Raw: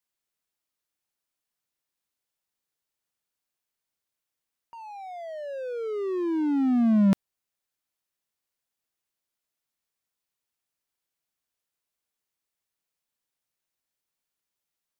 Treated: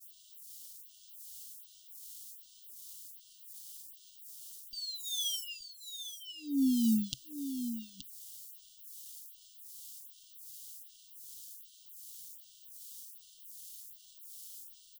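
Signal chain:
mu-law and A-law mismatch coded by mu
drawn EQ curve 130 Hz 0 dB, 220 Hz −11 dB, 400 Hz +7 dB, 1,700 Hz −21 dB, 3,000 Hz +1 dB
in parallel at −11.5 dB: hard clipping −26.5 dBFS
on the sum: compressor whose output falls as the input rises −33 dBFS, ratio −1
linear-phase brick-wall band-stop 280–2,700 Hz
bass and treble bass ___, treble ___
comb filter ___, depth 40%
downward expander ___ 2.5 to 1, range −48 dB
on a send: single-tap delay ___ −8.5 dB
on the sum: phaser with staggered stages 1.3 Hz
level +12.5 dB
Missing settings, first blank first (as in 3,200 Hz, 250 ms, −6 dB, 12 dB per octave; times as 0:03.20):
−5 dB, +7 dB, 6.4 ms, −54 dBFS, 875 ms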